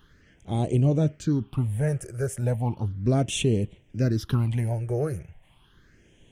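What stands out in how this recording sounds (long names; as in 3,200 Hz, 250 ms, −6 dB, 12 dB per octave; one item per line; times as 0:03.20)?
phaser sweep stages 6, 0.35 Hz, lowest notch 250–1,400 Hz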